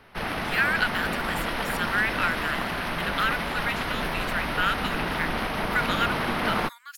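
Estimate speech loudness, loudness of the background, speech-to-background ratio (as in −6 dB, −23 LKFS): −29.5 LKFS, −28.0 LKFS, −1.5 dB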